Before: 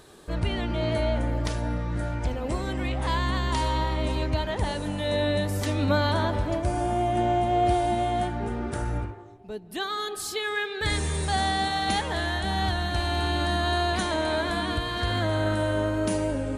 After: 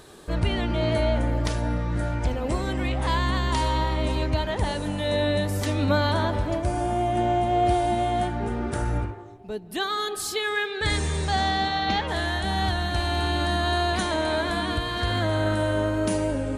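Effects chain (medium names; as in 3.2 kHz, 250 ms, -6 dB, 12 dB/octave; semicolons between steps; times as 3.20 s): 10.71–12.07 s: low-pass 11 kHz -> 4.4 kHz 24 dB/octave; in parallel at 0 dB: gain riding within 5 dB 2 s; on the sum: trim -4.5 dB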